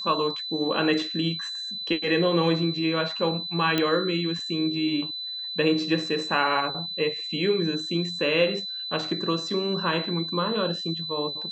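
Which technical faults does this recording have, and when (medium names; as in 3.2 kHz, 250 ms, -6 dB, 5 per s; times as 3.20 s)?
whine 4 kHz -31 dBFS
3.78 s: pop -10 dBFS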